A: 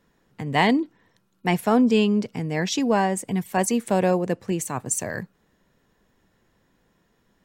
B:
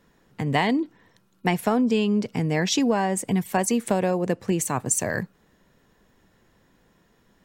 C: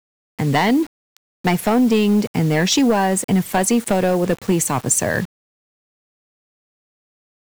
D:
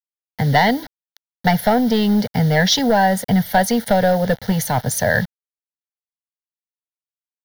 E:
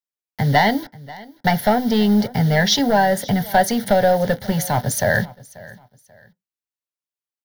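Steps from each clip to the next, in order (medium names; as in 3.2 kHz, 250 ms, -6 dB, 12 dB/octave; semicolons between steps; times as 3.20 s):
compression 6:1, threshold -22 dBFS, peak gain reduction 8.5 dB; trim +4 dB
in parallel at -10 dB: sine folder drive 9 dB, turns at -7 dBFS; on the sum: word length cut 6-bit, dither none
static phaser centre 1.7 kHz, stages 8; trim +5 dB
feedback delay 537 ms, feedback 30%, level -21 dB; on a send at -11 dB: reverberation RT60 0.15 s, pre-delay 3 ms; on the sum: trim -1 dB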